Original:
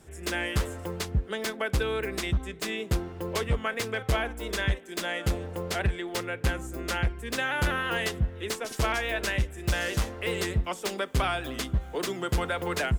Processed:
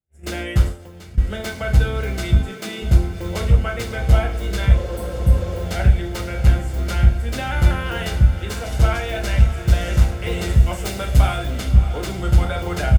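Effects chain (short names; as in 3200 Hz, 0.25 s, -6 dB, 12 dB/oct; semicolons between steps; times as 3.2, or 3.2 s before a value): gate -39 dBFS, range -43 dB; low shelf 420 Hz +8.5 dB; comb 1.4 ms, depth 37%; diffused feedback echo 0.62 s, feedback 62%, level -11 dB; 0.68–1.18 compressor 12:1, threshold -37 dBFS, peak gain reduction 25.5 dB; 2.36–2.82 HPF 160 Hz 24 dB/oct; 4.76–5.57 spectral repair 310–7700 Hz after; 10.49–11.38 high shelf 6600 Hz +8 dB; non-linear reverb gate 0.17 s falling, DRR 1.5 dB; gain -1.5 dB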